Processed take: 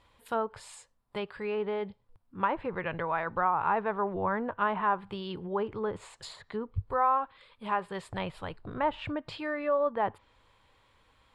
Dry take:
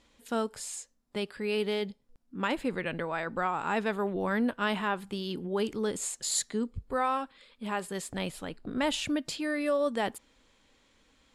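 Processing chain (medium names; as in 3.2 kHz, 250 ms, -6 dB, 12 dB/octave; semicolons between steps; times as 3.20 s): low-pass that closes with the level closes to 1.5 kHz, closed at -26 dBFS; fifteen-band graphic EQ 100 Hz +11 dB, 250 Hz -10 dB, 1 kHz +8 dB, 6.3 kHz -12 dB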